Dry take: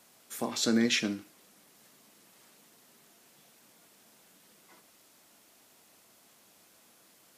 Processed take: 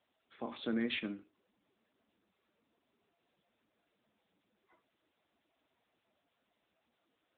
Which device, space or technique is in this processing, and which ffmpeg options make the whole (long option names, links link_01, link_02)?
mobile call with aggressive noise cancelling: -af "highpass=frequency=170:poles=1,afftdn=noise_reduction=20:noise_floor=-55,volume=-6.5dB" -ar 8000 -c:a libopencore_amrnb -b:a 10200